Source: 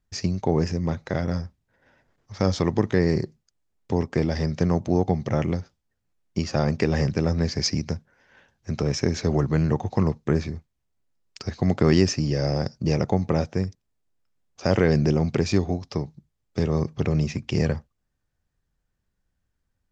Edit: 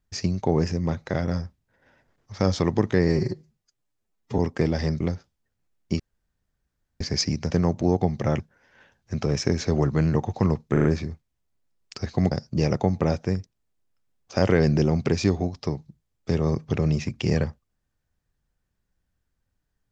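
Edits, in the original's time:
3.08–3.95 s: stretch 1.5×
4.57–5.46 s: move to 7.96 s
6.45–7.46 s: room tone
10.29 s: stutter 0.04 s, 4 plays
11.76–12.60 s: delete

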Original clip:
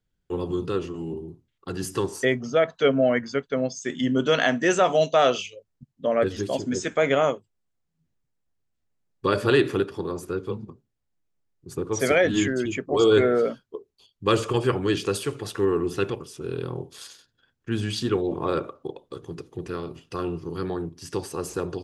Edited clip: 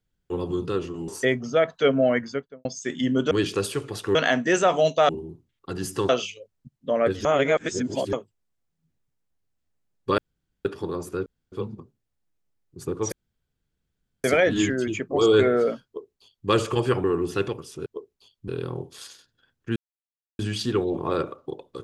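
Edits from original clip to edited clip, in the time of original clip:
1.08–2.08 s: move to 5.25 s
3.22–3.65 s: studio fade out
6.41–7.29 s: reverse
9.34–9.81 s: room tone
10.42 s: insert room tone 0.26 s
12.02 s: insert room tone 1.12 s
13.64–14.26 s: copy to 16.48 s
14.82–15.66 s: move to 4.31 s
17.76 s: insert silence 0.63 s

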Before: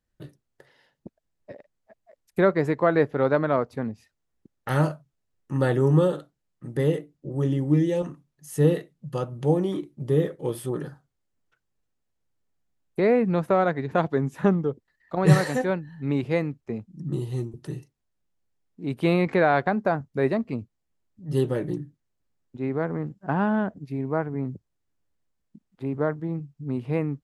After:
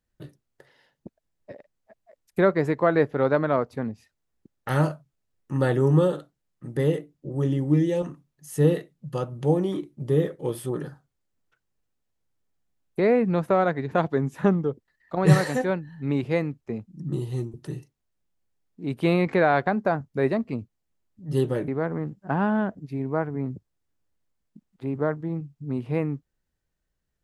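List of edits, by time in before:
21.68–22.67 s: delete

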